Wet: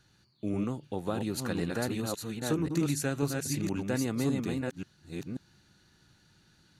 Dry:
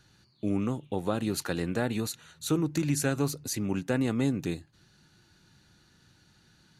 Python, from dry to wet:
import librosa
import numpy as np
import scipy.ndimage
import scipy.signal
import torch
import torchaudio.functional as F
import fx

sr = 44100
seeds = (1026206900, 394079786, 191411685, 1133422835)

y = fx.reverse_delay(x, sr, ms=537, wet_db=-3.0)
y = y * librosa.db_to_amplitude(-3.5)